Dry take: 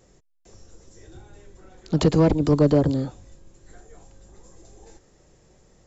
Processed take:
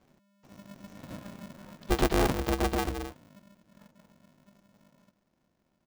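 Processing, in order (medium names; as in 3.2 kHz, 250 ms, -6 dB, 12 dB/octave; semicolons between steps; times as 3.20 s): partial rectifier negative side -3 dB; Doppler pass-by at 1.23 s, 18 m/s, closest 8.9 m; steep low-pass 6.3 kHz; treble shelf 5 kHz -11.5 dB; comb 1.4 ms, depth 47%; polarity switched at an audio rate 200 Hz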